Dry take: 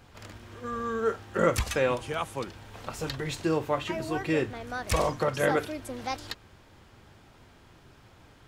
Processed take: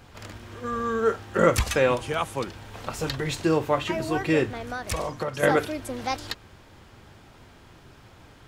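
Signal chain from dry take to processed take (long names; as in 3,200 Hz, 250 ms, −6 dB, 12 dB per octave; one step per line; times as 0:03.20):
0:04.60–0:05.43: downward compressor 2.5 to 1, threshold −34 dBFS, peak gain reduction 9 dB
level +4.5 dB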